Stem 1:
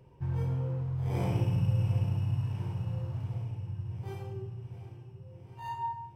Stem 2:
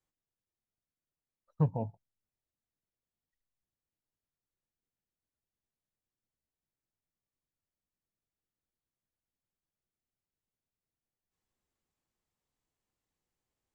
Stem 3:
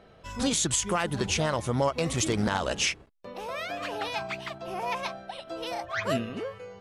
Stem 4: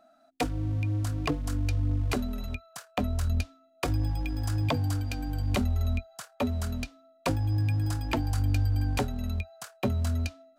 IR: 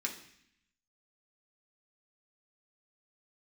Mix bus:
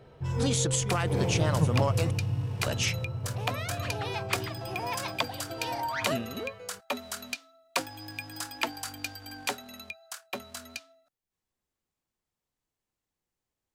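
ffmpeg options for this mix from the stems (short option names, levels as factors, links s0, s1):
-filter_complex "[0:a]equalizer=f=470:t=o:w=0.32:g=11,volume=1.06[s0];[1:a]volume=1.06[s1];[2:a]volume=0.708,asplit=3[s2][s3][s4];[s2]atrim=end=2.11,asetpts=PTS-STARTPTS,afade=t=out:st=2.106:d=0.004:c=hsin[s5];[s3]atrim=start=2.11:end=2.65,asetpts=PTS-STARTPTS,volume=0[s6];[s4]atrim=start=2.65,asetpts=PTS-STARTPTS,afade=t=in:d=0.004:c=hsin[s7];[s5][s6][s7]concat=n=3:v=0:a=1[s8];[3:a]highpass=220,tiltshelf=f=640:g=-8.5,dynaudnorm=f=340:g=11:m=1.68,adelay=500,volume=0.473[s9];[s0][s1][s8][s9]amix=inputs=4:normalize=0"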